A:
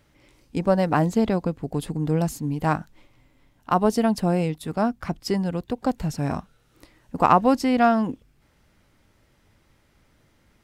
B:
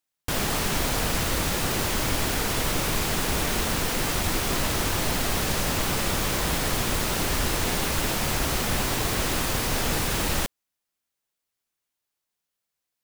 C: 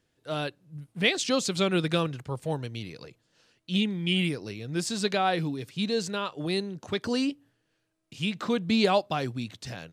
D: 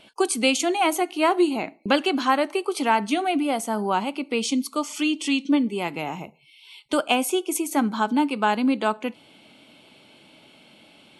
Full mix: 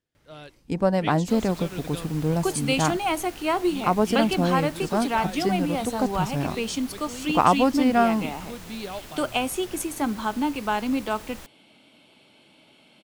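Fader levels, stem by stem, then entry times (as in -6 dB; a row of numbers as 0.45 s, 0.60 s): -1.5 dB, -17.5 dB, -12.0 dB, -4.0 dB; 0.15 s, 1.00 s, 0.00 s, 2.25 s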